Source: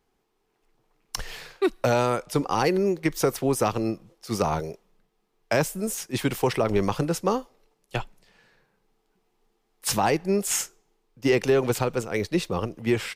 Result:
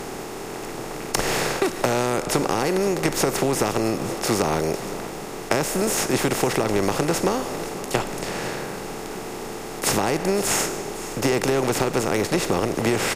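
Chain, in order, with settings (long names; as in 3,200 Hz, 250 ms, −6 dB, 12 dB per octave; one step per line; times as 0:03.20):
compressor on every frequency bin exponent 0.4
downward compressor, threshold −21 dBFS, peak gain reduction 9.5 dB
on a send: single-tap delay 513 ms −15 dB
on the sum: level +3 dB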